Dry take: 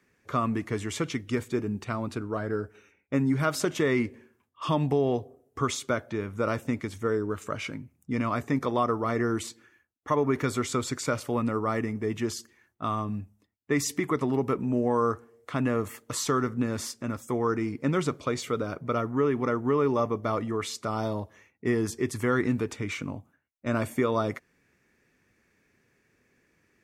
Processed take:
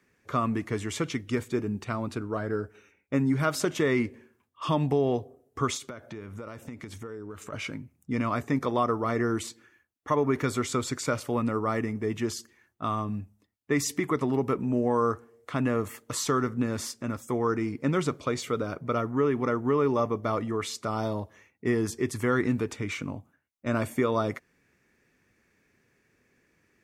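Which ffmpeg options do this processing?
-filter_complex "[0:a]asettb=1/sr,asplit=3[s0][s1][s2];[s0]atrim=end=5.774[s3];[s1]atrim=start=5.77:end=7.53,asetpts=PTS-STARTPTS,afade=t=in:d=0.004:c=qsin,afade=t=out:st=1.756:d=0.004:c=qsin,acompressor=threshold=0.0178:ratio=10:attack=3.2:release=140:knee=1:detection=peak[s4];[s2]atrim=start=7.526[s5];[s3][s4]acrossfade=d=0.004:c1=hsin:c2=qsin[s6];[s6][s5]acrossfade=d=0.004:c1=qsin:c2=hsin"

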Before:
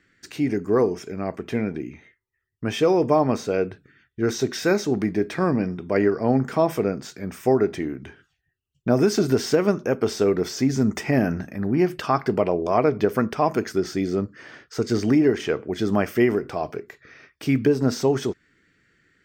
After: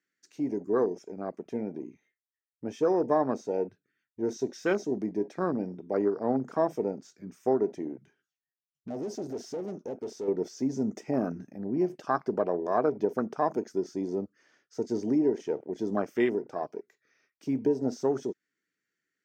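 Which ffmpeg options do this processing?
-filter_complex "[0:a]asettb=1/sr,asplit=3[s0][s1][s2];[s0]atrim=end=8.014[s3];[s1]atrim=start=8.01:end=10.28,asetpts=PTS-STARTPTS,afade=t=in:d=0.004:c=qsin,afade=t=out:st=2.266:d=0.004:c=qsin,aeval=exprs='(tanh(15.8*val(0)+0.35)-tanh(0.35))/15.8':c=same[s4];[s2]atrim=start=10.276[s5];[s3][s4]acrossfade=d=0.004:c1=hsin:c2=qsin[s6];[s6][s5]acrossfade=d=0.004:c1=qsin:c2=hsin,equalizer=f=6200:w=1.9:g=10.5,afwtdn=0.0501,highpass=220,volume=0.501"

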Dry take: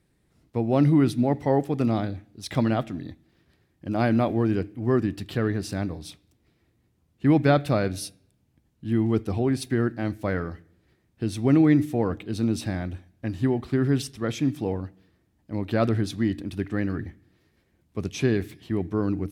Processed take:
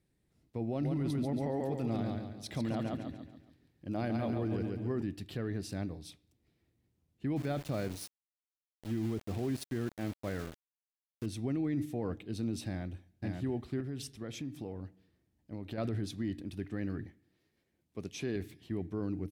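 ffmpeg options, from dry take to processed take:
-filter_complex "[0:a]asettb=1/sr,asplit=3[s0][s1][s2];[s0]atrim=end=0.674[s3];[s1]atrim=start=0.67:end=5.02,asetpts=PTS-STARTPTS,afade=t=in:d=0.004:c=qsin,afade=t=out:st=4.346:d=0.004:c=qsin,aecho=1:1:140|280|420|560|700:0.596|0.25|0.105|0.0441|0.0185,atrim=end_sample=191835[s4];[s2]atrim=start=5.016[s5];[s3][s4]acrossfade=d=0.004:c1=hsin:c2=qsin[s6];[s6][s5]acrossfade=d=0.004:c1=qsin:c2=hsin,asettb=1/sr,asplit=3[s7][s8][s9];[s7]atrim=end=7.364[s10];[s8]atrim=start=7.36:end=11.26,asetpts=PTS-STARTPTS,afade=t=in:d=0.004:c=qsin,afade=t=out:st=3.896:d=0.004:c=qsin,aeval=exprs='val(0)*gte(abs(val(0)),0.0237)':c=same[s11];[s9]atrim=start=11.256[s12];[s10][s11]acrossfade=d=0.004:c1=hsin:c2=qsin[s13];[s13][s12]acrossfade=d=0.004:c1=qsin:c2=hsin,asplit=2[s14][s15];[s15]afade=t=in:st=12.67:d=0.01,afade=t=out:st=13.26:d=0.01,aecho=0:1:550|1100:0.707946|0.0707946[s16];[s14][s16]amix=inputs=2:normalize=0,asettb=1/sr,asplit=3[s17][s18][s19];[s17]atrim=end=13.804[s20];[s18]atrim=start=13.8:end=15.78,asetpts=PTS-STARTPTS,afade=t=in:d=0.004:c=qsin,afade=t=out:st=1.976:d=0.004:c=qsin,acompressor=threshold=0.0447:ratio=6:attack=3.2:release=140:knee=1:detection=peak[s21];[s19]atrim=start=15.776[s22];[s20][s21]acrossfade=d=0.004:c1=hsin:c2=qsin[s23];[s23][s22]acrossfade=d=0.004:c1=qsin:c2=hsin,asettb=1/sr,asplit=3[s24][s25][s26];[s24]atrim=end=17.064[s27];[s25]atrim=start=17.06:end=18.36,asetpts=PTS-STARTPTS,afade=t=in:d=0.004:c=qsin,afade=t=out:st=1.296:d=0.004:c=qsin,lowshelf=f=120:g=-11[s28];[s26]atrim=start=18.356[s29];[s27][s28]acrossfade=d=0.004:c1=hsin:c2=qsin[s30];[s30][s29]acrossfade=d=0.004:c1=qsin:c2=hsin,equalizer=f=1200:t=o:w=1.2:g=-4.5,alimiter=limit=0.126:level=0:latency=1:release=14,volume=0.376"

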